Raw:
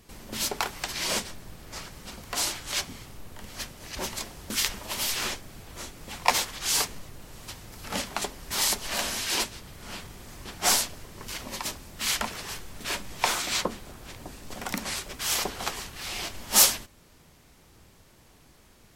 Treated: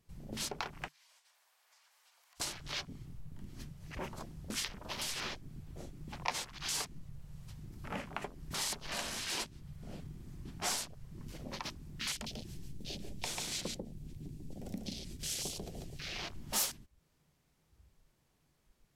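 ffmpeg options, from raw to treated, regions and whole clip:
ffmpeg -i in.wav -filter_complex "[0:a]asettb=1/sr,asplit=3[link_01][link_02][link_03];[link_01]atrim=end=0.884[link_04];[link_02]atrim=start=0.88:end=2.4,asetpts=PTS-STARTPTS,afade=type=in:duration=0.004:curve=qsin,afade=type=out:start_time=1.516:duration=0.004:curve=qsin,highpass=frequency=770:width=0.5412,highpass=frequency=770:width=1.3066,acompressor=threshold=-44dB:ratio=12:attack=3.2:release=140:knee=1:detection=peak,bandreject=frequency=1300:width=25[link_05];[link_03]atrim=start=2.396[link_06];[link_04][link_05]acrossfade=duration=0.004:curve1=hsin:curve2=qsin[link_07];[link_07][link_06]acrossfade=duration=0.004:curve1=qsin:curve2=hsin,asettb=1/sr,asplit=3[link_08][link_09][link_10];[link_08]atrim=end=12.124[link_11];[link_09]atrim=start=12.12:end=16,asetpts=PTS-STARTPTS,afade=type=in:duration=0.004:curve=qsin,afade=type=out:start_time=3.876:duration=0.004:curve=qsin,equalizer=frequency=1200:width_type=o:width=1.7:gain=-14,aecho=1:1:143:0.708,atrim=end_sample=171108[link_12];[link_10]atrim=start=15.996[link_13];[link_11][link_12]acrossfade=duration=0.004:curve1=hsin:curve2=qsin[link_14];[link_14][link_13]acrossfade=duration=0.004:curve1=qsin:curve2=hsin,afwtdn=0.0141,equalizer=frequency=150:width=4.6:gain=9,acompressor=threshold=-38dB:ratio=2,volume=-2.5dB" out.wav

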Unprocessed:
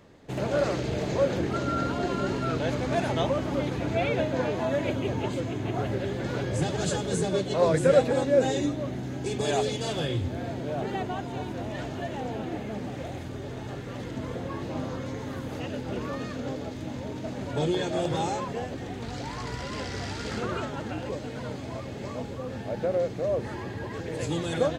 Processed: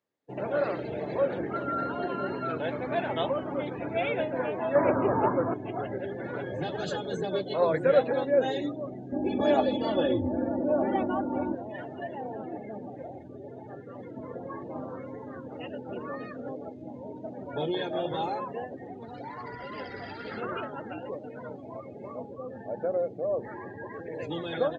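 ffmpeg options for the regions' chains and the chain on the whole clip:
ffmpeg -i in.wav -filter_complex "[0:a]asettb=1/sr,asplit=3[link_01][link_02][link_03];[link_01]atrim=end=4.754[link_04];[link_02]atrim=start=4.75:end=5.54,asetpts=PTS-STARTPTS,afade=type=in:duration=0.004:curve=qsin,afade=type=out:start_time=0.786:duration=0.004:curve=qsin,acontrast=69,lowpass=frequency=1200:width_type=q:width=2.4[link_05];[link_03]atrim=start=5.536[link_06];[link_04][link_05]acrossfade=duration=0.004:curve1=hsin:curve2=qsin[link_07];[link_07][link_06]acrossfade=duration=0.004:curve1=qsin:curve2=hsin,asettb=1/sr,asplit=3[link_08][link_09][link_10];[link_08]atrim=end=9.124[link_11];[link_09]atrim=start=9.12:end=11.55,asetpts=PTS-STARTPTS,afade=type=in:duration=0.004:curve=qsin,afade=type=out:start_time=2.426:duration=0.004:curve=qsin,tiltshelf=frequency=1400:gain=8,aecho=1:1:3.5:0.87,atrim=end_sample=107163[link_12];[link_10]atrim=start=11.546[link_13];[link_11][link_12]acrossfade=duration=0.004:curve1=hsin:curve2=qsin[link_14];[link_14][link_13]acrossfade=duration=0.004:curve1=qsin:curve2=hsin,acrossover=split=5800[link_15][link_16];[link_16]acompressor=threshold=-59dB:ratio=4:attack=1:release=60[link_17];[link_15][link_17]amix=inputs=2:normalize=0,highpass=frequency=400:poles=1,afftdn=noise_reduction=29:noise_floor=-39" out.wav

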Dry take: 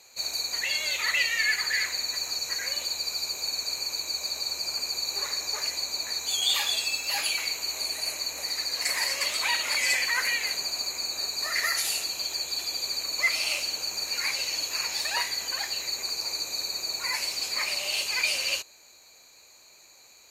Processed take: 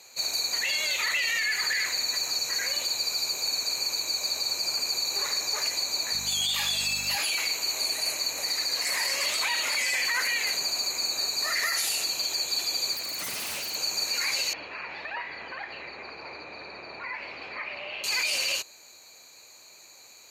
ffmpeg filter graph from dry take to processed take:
ffmpeg -i in.wav -filter_complex "[0:a]asettb=1/sr,asplit=3[link_01][link_02][link_03];[link_01]atrim=end=6.134[link_04];[link_02]atrim=start=6.13:end=7.16,asetpts=PTS-STARTPTS,afade=type=in:duration=0.004:curve=qsin,afade=type=out:start_time=1.026:duration=0.004:curve=qsin,highpass=frequency=570:poles=1,aeval=exprs='val(0)+0.00794*(sin(2*PI*50*n/s)+sin(2*PI*2*50*n/s)/2+sin(2*PI*3*50*n/s)/3+sin(2*PI*4*50*n/s)/4+sin(2*PI*5*50*n/s)/5)':channel_layout=same[link_05];[link_03]atrim=start=7.156[link_06];[link_04][link_05]acrossfade=duration=0.004:curve1=hsin:curve2=qsin[link_07];[link_07][link_06]acrossfade=duration=0.004:curve1=qsin:curve2=hsin,asettb=1/sr,asplit=3[link_08][link_09][link_10];[link_08]atrim=end=12.934[link_11];[link_09]atrim=start=12.93:end=13.75,asetpts=PTS-STARTPTS,afade=type=in:duration=0.004:curve=qsin,afade=type=out:start_time=0.816:duration=0.004:curve=qsin,highshelf=frequency=6500:gain=-6,aeval=exprs='0.0266*(abs(mod(val(0)/0.0266+3,4)-2)-1)':channel_layout=same[link_12];[link_10]atrim=start=13.746[link_13];[link_11][link_12]acrossfade=duration=0.004:curve1=hsin:curve2=qsin[link_14];[link_14][link_13]acrossfade=duration=0.004:curve1=qsin:curve2=hsin,asettb=1/sr,asplit=3[link_15][link_16][link_17];[link_15]atrim=end=14.534[link_18];[link_16]atrim=start=14.53:end=18.04,asetpts=PTS-STARTPTS,afade=type=in:duration=0.004:curve=qsin,afade=type=out:start_time=3.506:duration=0.004:curve=qsin,lowpass=frequency=2500:width=0.5412,lowpass=frequency=2500:width=1.3066,acompressor=threshold=-38dB:ratio=2:attack=3.2:release=140:knee=1:detection=peak[link_19];[link_17]atrim=start=18.036[link_20];[link_18][link_19]acrossfade=duration=0.004:curve1=hsin:curve2=qsin[link_21];[link_21][link_20]acrossfade=duration=0.004:curve1=qsin:curve2=hsin,highpass=89,alimiter=limit=-21.5dB:level=0:latency=1:release=21,volume=3dB" out.wav

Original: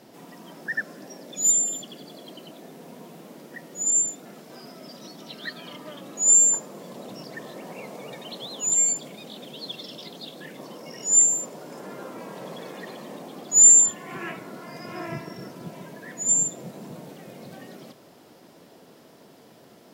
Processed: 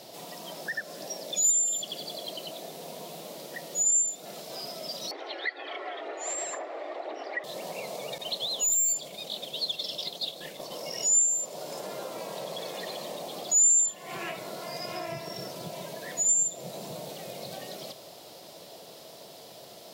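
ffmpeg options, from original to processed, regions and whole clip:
ffmpeg -i in.wav -filter_complex "[0:a]asettb=1/sr,asplit=3[link_01][link_02][link_03];[link_01]atrim=end=5.114[link_04];[link_02]atrim=start=5.11:end=7.44,asetpts=PTS-STARTPTS,afade=type=in:duration=0.004:curve=qsin,afade=type=out:start_time=2.326:duration=0.004:curve=qsin,aphaser=in_gain=1:out_gain=1:delay=4.5:decay=0.33:speed=2:type=sinusoidal,lowpass=frequency=1800:width_type=q:width=3.3,afreqshift=120[link_05];[link_03]atrim=start=7.436[link_06];[link_04][link_05]acrossfade=duration=0.004:curve1=hsin:curve2=qsin[link_07];[link_07][link_06]acrossfade=duration=0.004:curve1=qsin:curve2=hsin,asettb=1/sr,asplit=3[link_08][link_09][link_10];[link_08]atrim=end=8.184[link_11];[link_09]atrim=start=8.18:end=10.72,asetpts=PTS-STARTPTS,afade=type=in:duration=0.004:curve=qsin,afade=type=out:start_time=2.536:duration=0.004:curve=qsin,agate=range=-33dB:threshold=-39dB:ratio=3:release=100:detection=peak,aeval=exprs='(tanh(11.2*val(0)+0.3)-tanh(0.3))/11.2':channel_layout=same[link_12];[link_10]atrim=start=10.716[link_13];[link_11][link_12]acrossfade=duration=0.004:curve1=hsin:curve2=qsin[link_14];[link_14][link_13]acrossfade=duration=0.004:curve1=qsin:curve2=hsin,equalizer=frequency=250:width_type=o:width=0.67:gain=-8,equalizer=frequency=630:width_type=o:width=0.67:gain=8,equalizer=frequency=1600:width_type=o:width=0.67:gain=-5,equalizer=frequency=4000:width_type=o:width=0.67:gain=6,acompressor=threshold=-35dB:ratio=3,highshelf=frequency=2500:gain=9.5" out.wav

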